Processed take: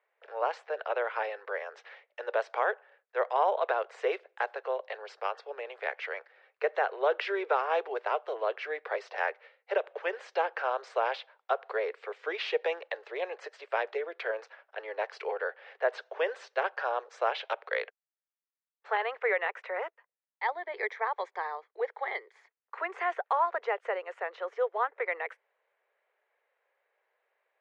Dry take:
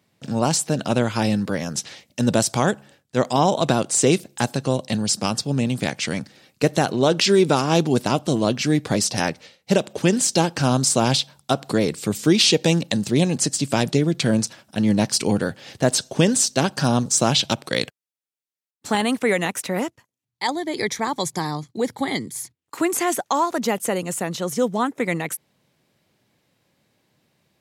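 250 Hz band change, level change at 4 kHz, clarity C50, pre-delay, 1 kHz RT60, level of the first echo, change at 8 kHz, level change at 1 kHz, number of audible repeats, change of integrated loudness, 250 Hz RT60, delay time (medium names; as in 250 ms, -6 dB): -32.0 dB, -21.0 dB, no reverb, no reverb, no reverb, no echo, under -40 dB, -6.0 dB, no echo, -11.5 dB, no reverb, no echo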